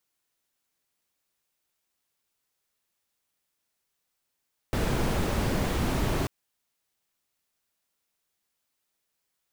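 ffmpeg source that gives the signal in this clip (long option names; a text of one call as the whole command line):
ffmpeg -f lavfi -i "anoisesrc=color=brown:amplitude=0.234:duration=1.54:sample_rate=44100:seed=1" out.wav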